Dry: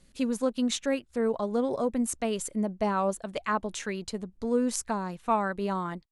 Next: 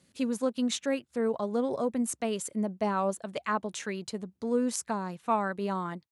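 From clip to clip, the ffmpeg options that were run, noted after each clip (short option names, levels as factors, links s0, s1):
-af "highpass=f=88:w=0.5412,highpass=f=88:w=1.3066,volume=0.841"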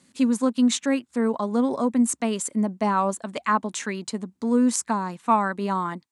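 -af "equalizer=f=250:t=o:w=1:g=12,equalizer=f=1000:t=o:w=1:g=10,equalizer=f=2000:t=o:w=1:g=6,equalizer=f=4000:t=o:w=1:g=4,equalizer=f=8000:t=o:w=1:g=11,volume=0.75"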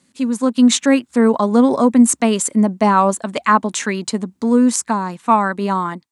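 -af "dynaudnorm=f=190:g=5:m=3.98"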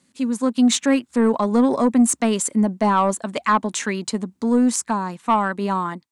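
-af "asoftclip=type=tanh:threshold=0.596,volume=0.708"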